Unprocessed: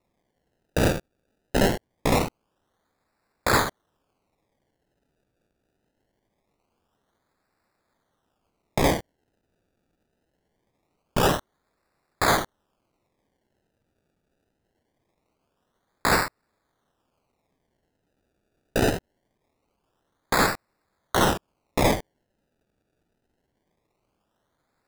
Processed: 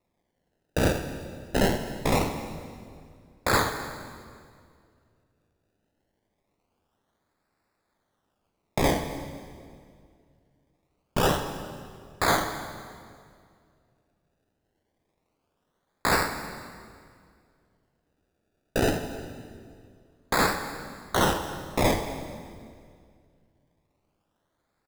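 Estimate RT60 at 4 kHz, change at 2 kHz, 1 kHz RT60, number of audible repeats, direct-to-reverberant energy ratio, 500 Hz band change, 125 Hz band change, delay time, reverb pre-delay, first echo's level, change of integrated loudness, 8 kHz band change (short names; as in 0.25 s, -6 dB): 1.8 s, -2.0 dB, 2.0 s, 1, 7.0 dB, -1.5 dB, -1.5 dB, 0.255 s, 9 ms, -22.0 dB, -3.0 dB, -2.0 dB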